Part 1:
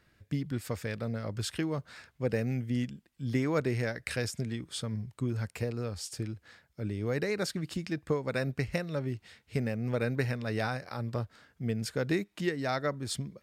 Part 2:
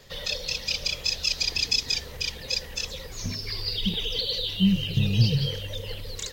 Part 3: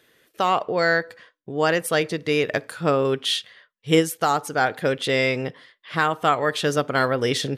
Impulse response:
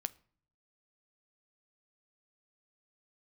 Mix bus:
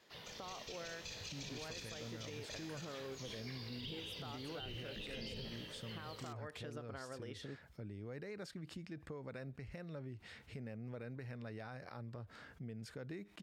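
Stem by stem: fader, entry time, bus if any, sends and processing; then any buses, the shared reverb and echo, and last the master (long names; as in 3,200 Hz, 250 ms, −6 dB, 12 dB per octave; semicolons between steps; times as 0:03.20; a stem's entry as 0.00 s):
−12.5 dB, 1.00 s, bus A, no send, envelope flattener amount 50%
+0.5 dB, 0.00 s, no bus, no send, gate on every frequency bin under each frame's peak −10 dB weak; tuned comb filter 54 Hz, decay 1.4 s, harmonics all, mix 80%
−13.5 dB, 0.00 s, bus A, no send, downward compressor, threshold −24 dBFS, peak gain reduction 11.5 dB
bus A: 0.0 dB, downward compressor 2.5 to 1, threshold −46 dBFS, peak gain reduction 9 dB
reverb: not used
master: high-shelf EQ 4,700 Hz −9.5 dB; brickwall limiter −37 dBFS, peak gain reduction 8 dB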